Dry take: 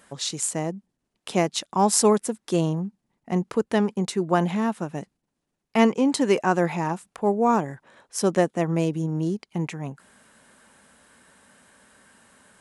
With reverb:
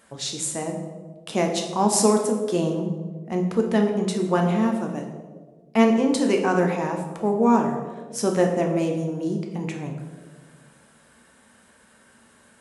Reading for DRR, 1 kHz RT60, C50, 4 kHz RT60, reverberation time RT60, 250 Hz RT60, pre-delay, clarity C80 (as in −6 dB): 2.0 dB, 1.2 s, 6.0 dB, 0.80 s, 1.5 s, 1.6 s, 5 ms, 8.0 dB